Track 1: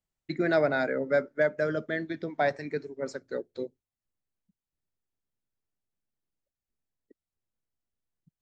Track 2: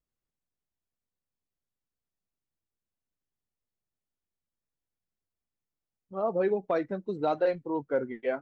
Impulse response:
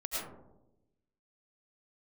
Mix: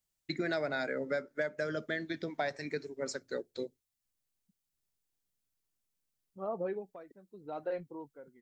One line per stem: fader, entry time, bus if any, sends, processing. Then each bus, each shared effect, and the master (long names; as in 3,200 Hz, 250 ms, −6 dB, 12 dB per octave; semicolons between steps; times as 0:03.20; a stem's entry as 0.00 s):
−3.0 dB, 0.00 s, no send, high-shelf EQ 2,800 Hz +12 dB
−6.0 dB, 0.25 s, no send, bass and treble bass +1 dB, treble −8 dB; automatic ducking −21 dB, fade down 0.45 s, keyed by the first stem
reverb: not used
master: downward compressor 4 to 1, threshold −31 dBFS, peak gain reduction 9 dB